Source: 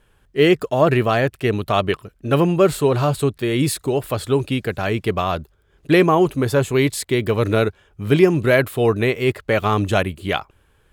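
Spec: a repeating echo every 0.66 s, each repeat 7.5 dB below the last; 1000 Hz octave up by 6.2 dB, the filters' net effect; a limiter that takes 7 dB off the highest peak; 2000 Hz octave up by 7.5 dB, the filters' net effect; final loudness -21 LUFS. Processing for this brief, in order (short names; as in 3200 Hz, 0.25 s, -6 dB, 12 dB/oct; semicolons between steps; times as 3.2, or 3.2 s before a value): bell 1000 Hz +6 dB; bell 2000 Hz +7.5 dB; limiter -4 dBFS; feedback echo 0.66 s, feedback 42%, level -7.5 dB; gain -4 dB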